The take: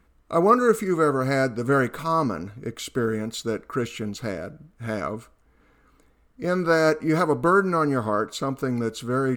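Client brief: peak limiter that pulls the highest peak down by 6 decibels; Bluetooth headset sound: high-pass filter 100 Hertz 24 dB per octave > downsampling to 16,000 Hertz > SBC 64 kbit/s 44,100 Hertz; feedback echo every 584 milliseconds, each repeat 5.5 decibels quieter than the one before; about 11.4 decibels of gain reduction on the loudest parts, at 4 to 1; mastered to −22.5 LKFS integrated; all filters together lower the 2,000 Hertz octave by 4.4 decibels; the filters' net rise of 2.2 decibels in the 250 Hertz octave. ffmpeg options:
ffmpeg -i in.wav -af "equalizer=frequency=250:width_type=o:gain=3,equalizer=frequency=2000:width_type=o:gain=-7,acompressor=threshold=-27dB:ratio=4,alimiter=limit=-21.5dB:level=0:latency=1,highpass=frequency=100:width=0.5412,highpass=frequency=100:width=1.3066,aecho=1:1:584|1168|1752|2336|2920|3504|4088:0.531|0.281|0.149|0.079|0.0419|0.0222|0.0118,aresample=16000,aresample=44100,volume=9dB" -ar 44100 -c:a sbc -b:a 64k out.sbc

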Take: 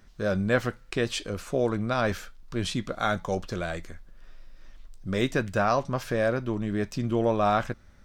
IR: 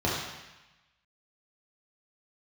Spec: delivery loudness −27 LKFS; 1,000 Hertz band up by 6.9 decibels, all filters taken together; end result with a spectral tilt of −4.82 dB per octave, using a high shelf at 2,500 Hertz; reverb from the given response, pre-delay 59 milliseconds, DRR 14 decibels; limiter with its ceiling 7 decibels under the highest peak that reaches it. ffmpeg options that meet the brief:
-filter_complex "[0:a]equalizer=frequency=1000:width_type=o:gain=8.5,highshelf=frequency=2500:gain=7,alimiter=limit=-12dB:level=0:latency=1,asplit=2[link_01][link_02];[1:a]atrim=start_sample=2205,adelay=59[link_03];[link_02][link_03]afir=irnorm=-1:irlink=0,volume=-26.5dB[link_04];[link_01][link_04]amix=inputs=2:normalize=0,volume=-1dB"

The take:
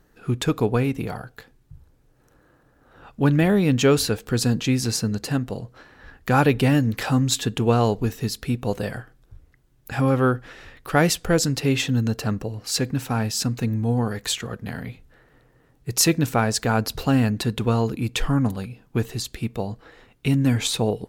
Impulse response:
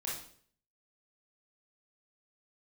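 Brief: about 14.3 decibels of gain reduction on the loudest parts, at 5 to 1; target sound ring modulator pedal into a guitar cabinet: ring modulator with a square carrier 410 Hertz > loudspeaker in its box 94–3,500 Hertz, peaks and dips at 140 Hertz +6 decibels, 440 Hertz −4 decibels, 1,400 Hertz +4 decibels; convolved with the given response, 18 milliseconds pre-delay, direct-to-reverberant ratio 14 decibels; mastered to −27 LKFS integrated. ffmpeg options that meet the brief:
-filter_complex "[0:a]acompressor=threshold=-30dB:ratio=5,asplit=2[link_01][link_02];[1:a]atrim=start_sample=2205,adelay=18[link_03];[link_02][link_03]afir=irnorm=-1:irlink=0,volume=-16dB[link_04];[link_01][link_04]amix=inputs=2:normalize=0,aeval=exprs='val(0)*sgn(sin(2*PI*410*n/s))':channel_layout=same,highpass=94,equalizer=frequency=140:width_type=q:width=4:gain=6,equalizer=frequency=440:width_type=q:width=4:gain=-4,equalizer=frequency=1400:width_type=q:width=4:gain=4,lowpass=frequency=3500:width=0.5412,lowpass=frequency=3500:width=1.3066,volume=6.5dB"

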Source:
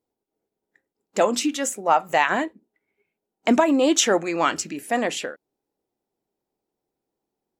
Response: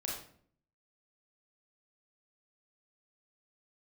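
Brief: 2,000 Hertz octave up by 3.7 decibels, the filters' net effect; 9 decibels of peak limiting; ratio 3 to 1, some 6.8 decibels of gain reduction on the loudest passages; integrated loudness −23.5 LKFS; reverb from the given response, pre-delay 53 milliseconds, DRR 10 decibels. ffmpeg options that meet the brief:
-filter_complex "[0:a]equalizer=frequency=2000:width_type=o:gain=4.5,acompressor=threshold=-22dB:ratio=3,alimiter=limit=-15.5dB:level=0:latency=1,asplit=2[link_01][link_02];[1:a]atrim=start_sample=2205,adelay=53[link_03];[link_02][link_03]afir=irnorm=-1:irlink=0,volume=-11.5dB[link_04];[link_01][link_04]amix=inputs=2:normalize=0,volume=3.5dB"

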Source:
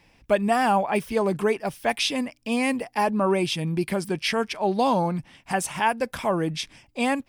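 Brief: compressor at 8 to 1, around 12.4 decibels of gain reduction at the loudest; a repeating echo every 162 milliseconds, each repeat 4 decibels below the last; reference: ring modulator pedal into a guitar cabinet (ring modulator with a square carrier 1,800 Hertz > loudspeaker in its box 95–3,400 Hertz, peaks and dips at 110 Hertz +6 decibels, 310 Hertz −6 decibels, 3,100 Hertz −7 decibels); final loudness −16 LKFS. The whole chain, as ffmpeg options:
ffmpeg -i in.wav -af "acompressor=threshold=-30dB:ratio=8,aecho=1:1:162|324|486|648|810|972|1134|1296|1458:0.631|0.398|0.25|0.158|0.0994|0.0626|0.0394|0.0249|0.0157,aeval=exprs='val(0)*sgn(sin(2*PI*1800*n/s))':channel_layout=same,highpass=95,equalizer=frequency=110:width_type=q:width=4:gain=6,equalizer=frequency=310:width_type=q:width=4:gain=-6,equalizer=frequency=3100:width_type=q:width=4:gain=-7,lowpass=frequency=3400:width=0.5412,lowpass=frequency=3400:width=1.3066,volume=16.5dB" out.wav

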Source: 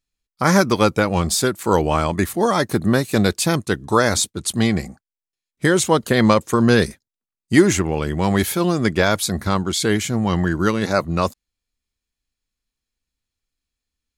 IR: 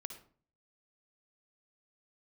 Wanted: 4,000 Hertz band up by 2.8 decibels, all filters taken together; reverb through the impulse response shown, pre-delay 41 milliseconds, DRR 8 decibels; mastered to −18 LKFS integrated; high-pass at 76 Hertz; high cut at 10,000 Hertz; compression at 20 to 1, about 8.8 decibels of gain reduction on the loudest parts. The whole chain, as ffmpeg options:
-filter_complex "[0:a]highpass=76,lowpass=10000,equalizer=frequency=4000:width_type=o:gain=3.5,acompressor=threshold=-16dB:ratio=20,asplit=2[link_01][link_02];[1:a]atrim=start_sample=2205,adelay=41[link_03];[link_02][link_03]afir=irnorm=-1:irlink=0,volume=-5dB[link_04];[link_01][link_04]amix=inputs=2:normalize=0,volume=4dB"

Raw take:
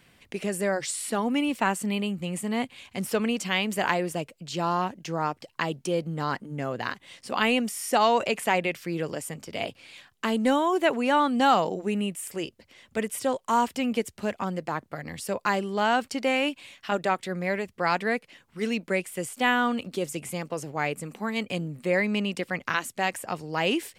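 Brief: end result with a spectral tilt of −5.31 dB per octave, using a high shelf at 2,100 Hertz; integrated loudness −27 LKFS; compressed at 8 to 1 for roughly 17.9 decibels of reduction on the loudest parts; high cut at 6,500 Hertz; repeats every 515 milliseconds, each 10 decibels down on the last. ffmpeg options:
ffmpeg -i in.wav -af "lowpass=6500,highshelf=frequency=2100:gain=-6,acompressor=threshold=-37dB:ratio=8,aecho=1:1:515|1030|1545|2060:0.316|0.101|0.0324|0.0104,volume=14.5dB" out.wav

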